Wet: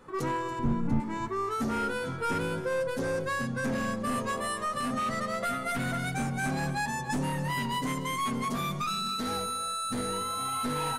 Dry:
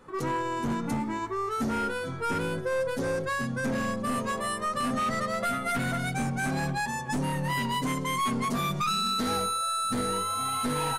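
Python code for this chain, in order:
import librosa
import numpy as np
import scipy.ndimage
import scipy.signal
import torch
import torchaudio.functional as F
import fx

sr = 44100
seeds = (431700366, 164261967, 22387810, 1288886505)

p1 = fx.riaa(x, sr, side='playback', at=(0.59, 1.0))
p2 = fx.rider(p1, sr, range_db=10, speed_s=0.5)
p3 = p2 + fx.echo_single(p2, sr, ms=284, db=-14.5, dry=0)
y = p3 * 10.0 ** (-2.5 / 20.0)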